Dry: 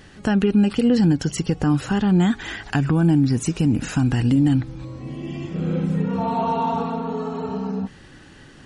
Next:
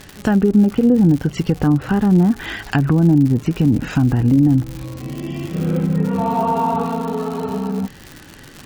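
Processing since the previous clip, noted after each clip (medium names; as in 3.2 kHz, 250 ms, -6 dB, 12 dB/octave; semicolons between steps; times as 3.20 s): low-pass that closes with the level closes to 740 Hz, closed at -14 dBFS; crackle 150 per s -28 dBFS; trim +4 dB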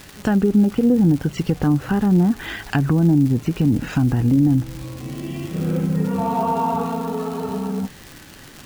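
bit crusher 7-bit; trim -2.5 dB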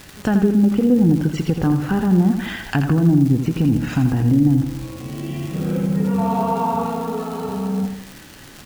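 feedback delay 83 ms, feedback 47%, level -8 dB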